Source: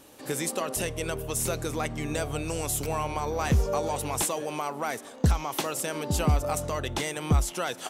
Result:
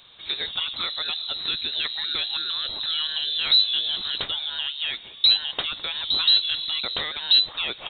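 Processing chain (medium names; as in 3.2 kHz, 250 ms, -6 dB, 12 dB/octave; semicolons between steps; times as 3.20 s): frequency inversion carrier 4 kHz; trim +2.5 dB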